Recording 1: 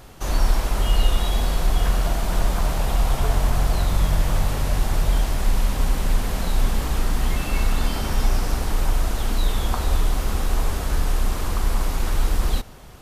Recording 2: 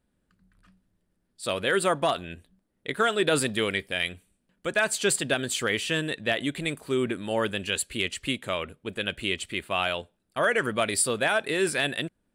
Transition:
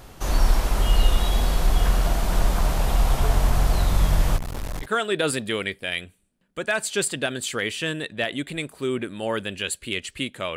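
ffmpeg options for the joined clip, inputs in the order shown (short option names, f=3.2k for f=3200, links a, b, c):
-filter_complex "[0:a]asplit=3[a][b][c];[a]afade=t=out:st=4.36:d=0.02[d];[b]aeval=exprs='(tanh(25.1*val(0)+0.7)-tanh(0.7))/25.1':c=same,afade=t=in:st=4.36:d=0.02,afade=t=out:st=4.88:d=0.02[e];[c]afade=t=in:st=4.88:d=0.02[f];[d][e][f]amix=inputs=3:normalize=0,apad=whole_dur=10.56,atrim=end=10.56,atrim=end=4.88,asetpts=PTS-STARTPTS[g];[1:a]atrim=start=2.88:end=8.64,asetpts=PTS-STARTPTS[h];[g][h]acrossfade=d=0.08:c1=tri:c2=tri"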